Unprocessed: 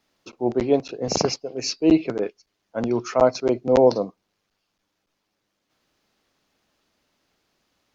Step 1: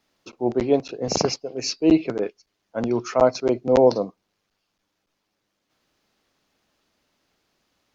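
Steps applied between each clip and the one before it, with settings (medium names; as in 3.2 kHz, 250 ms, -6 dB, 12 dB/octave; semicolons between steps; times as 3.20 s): no audible change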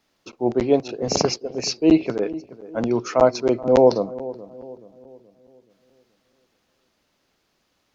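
filtered feedback delay 427 ms, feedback 47%, low-pass 990 Hz, level -16 dB; trim +1.5 dB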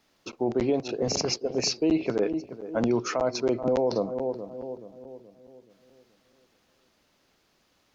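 in parallel at 0 dB: compression, threshold -25 dBFS, peak gain reduction 15 dB; on the sum: peak limiter -11 dBFS, peak gain reduction 11 dB; trim -4.5 dB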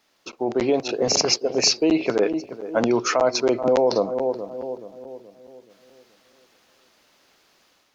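bass shelf 270 Hz -12 dB; level rider gain up to 6 dB; trim +3 dB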